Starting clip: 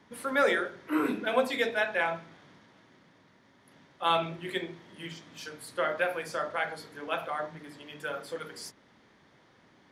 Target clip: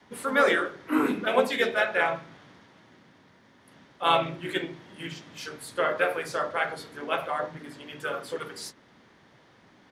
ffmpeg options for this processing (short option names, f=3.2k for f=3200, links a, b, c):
-filter_complex "[0:a]adynamicequalizer=threshold=0.00891:dfrequency=170:dqfactor=0.86:tfrequency=170:tqfactor=0.86:attack=5:release=100:ratio=0.375:range=1.5:mode=cutabove:tftype=bell,asplit=2[a][b];[b]asetrate=37084,aresample=44100,atempo=1.18921,volume=-7dB[c];[a][c]amix=inputs=2:normalize=0,volume=3dB"